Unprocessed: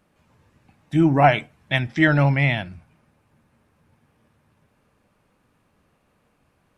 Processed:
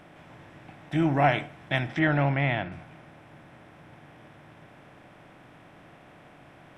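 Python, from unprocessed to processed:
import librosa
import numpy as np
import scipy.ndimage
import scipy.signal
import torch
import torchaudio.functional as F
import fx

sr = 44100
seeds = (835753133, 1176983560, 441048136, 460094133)

y = fx.bin_compress(x, sr, power=0.6)
y = fx.lowpass(y, sr, hz=3100.0, slope=12, at=(1.99, 2.72))
y = y * librosa.db_to_amplitude(-8.5)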